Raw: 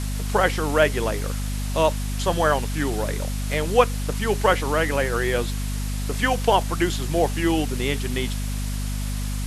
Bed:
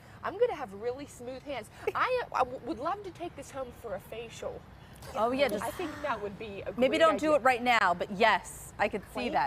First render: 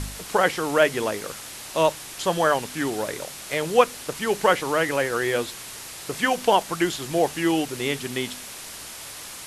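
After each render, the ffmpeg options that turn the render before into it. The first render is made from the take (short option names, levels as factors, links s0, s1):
-af "bandreject=f=50:t=h:w=4,bandreject=f=100:t=h:w=4,bandreject=f=150:t=h:w=4,bandreject=f=200:t=h:w=4,bandreject=f=250:t=h:w=4"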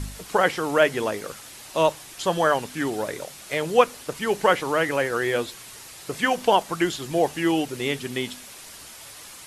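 -af "afftdn=nr=6:nf=-39"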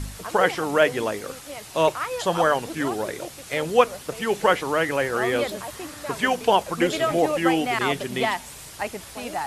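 -filter_complex "[1:a]volume=0.944[s0];[0:a][s0]amix=inputs=2:normalize=0"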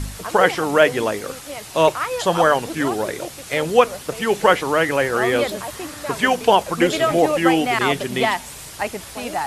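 -af "volume=1.68,alimiter=limit=0.794:level=0:latency=1"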